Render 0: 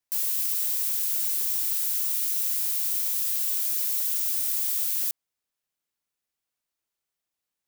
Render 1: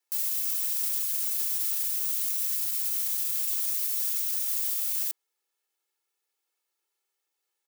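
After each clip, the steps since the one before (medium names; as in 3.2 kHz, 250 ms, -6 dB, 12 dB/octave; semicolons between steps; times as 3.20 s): Chebyshev high-pass 330 Hz, order 4; comb 2.3 ms, depth 76%; peak limiter -21.5 dBFS, peak gain reduction 9.5 dB; trim +2.5 dB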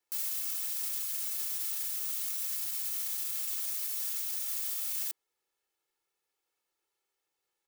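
tilt EQ -1.5 dB/octave; gain riding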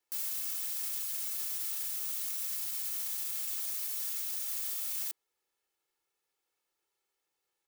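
saturation -27.5 dBFS, distortion -20 dB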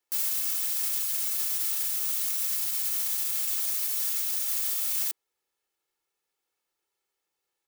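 upward expansion 1.5:1, over -49 dBFS; trim +8 dB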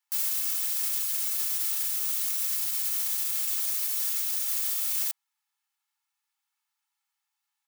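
brick-wall FIR high-pass 770 Hz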